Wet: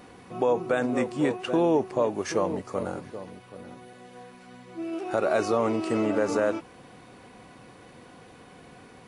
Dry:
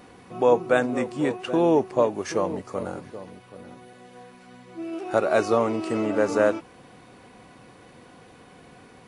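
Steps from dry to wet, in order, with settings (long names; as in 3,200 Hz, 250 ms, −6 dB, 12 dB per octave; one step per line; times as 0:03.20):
brickwall limiter −14 dBFS, peak gain reduction 7.5 dB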